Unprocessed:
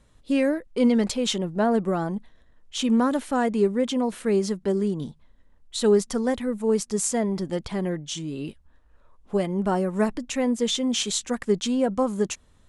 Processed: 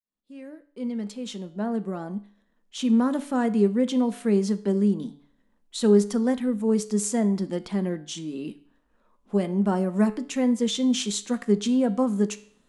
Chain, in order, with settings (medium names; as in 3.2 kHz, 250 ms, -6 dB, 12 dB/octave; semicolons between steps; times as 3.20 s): fade-in on the opening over 3.70 s; resonant low shelf 150 Hz -10 dB, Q 3; feedback comb 51 Hz, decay 0.48 s, harmonics all, mix 40%; de-hum 143.2 Hz, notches 35